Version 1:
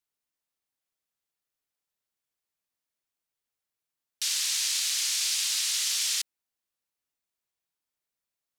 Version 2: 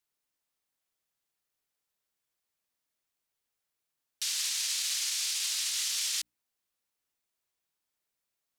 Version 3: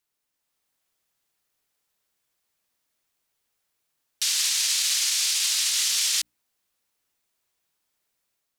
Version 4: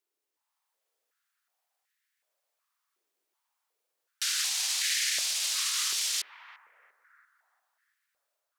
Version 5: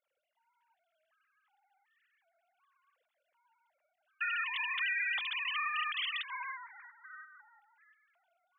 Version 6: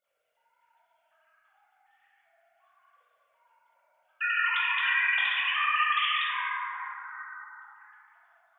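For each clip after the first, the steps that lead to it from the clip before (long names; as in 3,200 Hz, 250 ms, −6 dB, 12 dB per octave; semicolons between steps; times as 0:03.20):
mains-hum notches 60/120/180/240/300 Hz; brickwall limiter −25 dBFS, peak gain reduction 9 dB; level +2.5 dB
automatic gain control gain up to 4.5 dB; level +3.5 dB
bucket-brigade delay 344 ms, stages 4,096, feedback 49%, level −6 dB; high-pass on a step sequencer 2.7 Hz 380–1,800 Hz; level −6.5 dB
three sine waves on the formant tracks; downward compressor 3 to 1, threshold −33 dBFS, peak gain reduction 8 dB
dense smooth reverb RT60 2.6 s, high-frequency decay 0.4×, DRR −5.5 dB; level +2.5 dB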